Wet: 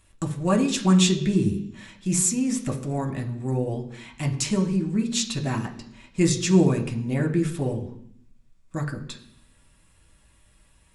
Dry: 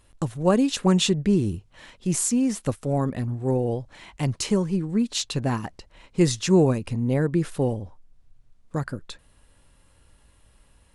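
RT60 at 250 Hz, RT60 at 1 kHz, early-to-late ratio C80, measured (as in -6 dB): 0.95 s, 0.65 s, 14.0 dB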